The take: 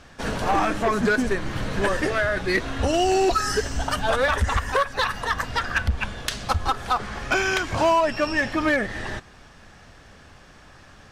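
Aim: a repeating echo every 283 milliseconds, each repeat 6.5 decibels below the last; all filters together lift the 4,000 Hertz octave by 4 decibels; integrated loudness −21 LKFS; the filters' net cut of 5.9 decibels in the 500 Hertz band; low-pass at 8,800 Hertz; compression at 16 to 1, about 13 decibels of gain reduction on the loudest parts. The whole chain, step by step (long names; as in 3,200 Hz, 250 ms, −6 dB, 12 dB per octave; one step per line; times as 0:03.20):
low-pass filter 8,800 Hz
parametric band 500 Hz −8.5 dB
parametric band 4,000 Hz +5.5 dB
downward compressor 16 to 1, threshold −31 dBFS
repeating echo 283 ms, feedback 47%, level −6.5 dB
level +13 dB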